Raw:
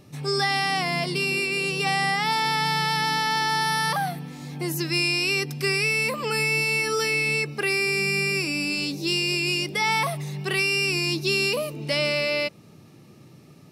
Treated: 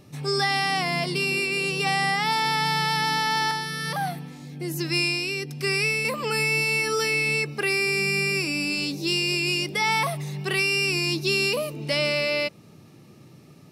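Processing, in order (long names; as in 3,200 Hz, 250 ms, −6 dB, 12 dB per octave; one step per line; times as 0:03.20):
0:03.51–0:06.05: rotating-speaker cabinet horn 1.2 Hz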